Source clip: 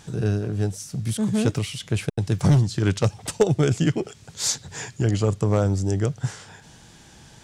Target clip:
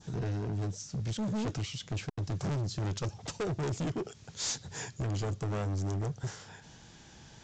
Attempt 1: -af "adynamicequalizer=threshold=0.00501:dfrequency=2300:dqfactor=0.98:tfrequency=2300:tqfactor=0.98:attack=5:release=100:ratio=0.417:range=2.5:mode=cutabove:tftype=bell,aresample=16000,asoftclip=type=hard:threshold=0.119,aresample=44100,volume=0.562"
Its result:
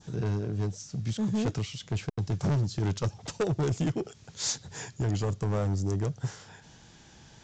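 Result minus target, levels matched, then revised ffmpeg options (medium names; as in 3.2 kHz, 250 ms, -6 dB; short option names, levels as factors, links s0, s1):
hard clipper: distortion -5 dB
-af "adynamicequalizer=threshold=0.00501:dfrequency=2300:dqfactor=0.98:tfrequency=2300:tqfactor=0.98:attack=5:release=100:ratio=0.417:range=2.5:mode=cutabove:tftype=bell,aresample=16000,asoftclip=type=hard:threshold=0.0531,aresample=44100,volume=0.562"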